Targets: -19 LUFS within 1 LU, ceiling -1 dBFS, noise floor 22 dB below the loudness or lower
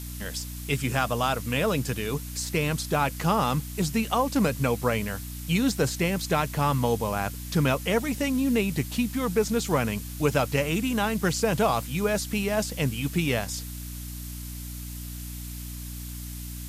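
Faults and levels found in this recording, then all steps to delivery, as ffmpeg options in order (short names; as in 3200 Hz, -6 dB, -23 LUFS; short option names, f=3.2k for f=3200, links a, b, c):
hum 60 Hz; harmonics up to 300 Hz; hum level -35 dBFS; noise floor -37 dBFS; noise floor target -49 dBFS; loudness -26.5 LUFS; peak -9.0 dBFS; loudness target -19.0 LUFS
-> -af "bandreject=f=60:t=h:w=4,bandreject=f=120:t=h:w=4,bandreject=f=180:t=h:w=4,bandreject=f=240:t=h:w=4,bandreject=f=300:t=h:w=4"
-af "afftdn=nr=12:nf=-37"
-af "volume=7.5dB"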